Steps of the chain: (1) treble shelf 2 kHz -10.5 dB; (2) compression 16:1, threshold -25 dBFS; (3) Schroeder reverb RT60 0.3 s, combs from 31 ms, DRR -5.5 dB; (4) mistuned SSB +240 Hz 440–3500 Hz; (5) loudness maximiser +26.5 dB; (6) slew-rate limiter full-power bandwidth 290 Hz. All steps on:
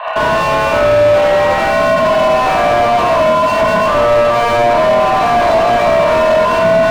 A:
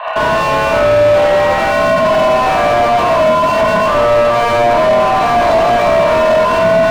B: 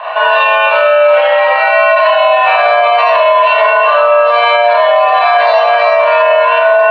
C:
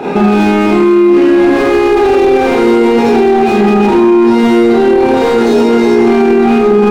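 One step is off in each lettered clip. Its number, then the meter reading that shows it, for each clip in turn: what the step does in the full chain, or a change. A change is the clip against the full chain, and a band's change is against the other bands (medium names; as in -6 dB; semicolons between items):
2, mean gain reduction 4.0 dB; 6, distortion -2 dB; 4, 250 Hz band +18.0 dB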